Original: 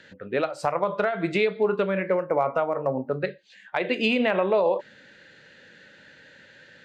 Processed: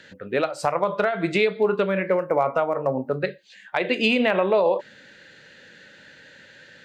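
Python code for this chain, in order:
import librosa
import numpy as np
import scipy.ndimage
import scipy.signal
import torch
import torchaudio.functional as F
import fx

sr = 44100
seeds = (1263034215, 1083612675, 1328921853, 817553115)

y = fx.high_shelf(x, sr, hz=4700.0, db=5.5)
y = y * librosa.db_to_amplitude(2.0)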